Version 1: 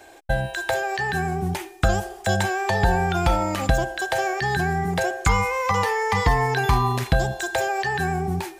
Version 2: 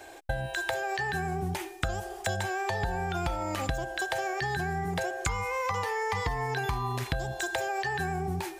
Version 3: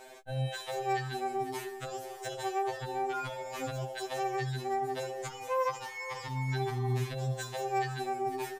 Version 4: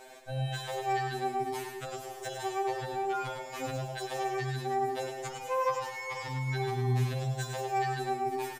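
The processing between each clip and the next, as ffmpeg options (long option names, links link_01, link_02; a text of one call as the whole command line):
ffmpeg -i in.wav -af "equalizer=frequency=210:width=5.9:gain=-10.5,acompressor=threshold=-28dB:ratio=6" out.wav
ffmpeg -i in.wav -af "alimiter=level_in=0.5dB:limit=-24dB:level=0:latency=1:release=36,volume=-0.5dB,aecho=1:1:500:0.178,afftfilt=real='re*2.45*eq(mod(b,6),0)':imag='im*2.45*eq(mod(b,6),0)':win_size=2048:overlap=0.75" out.wav
ffmpeg -i in.wav -af "aecho=1:1:105|210|315|420:0.501|0.165|0.0546|0.018" out.wav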